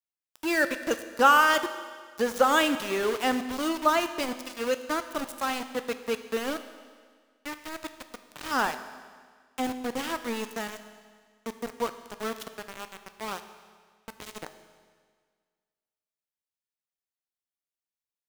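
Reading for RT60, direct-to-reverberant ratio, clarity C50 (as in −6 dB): 1.7 s, 9.5 dB, 11.0 dB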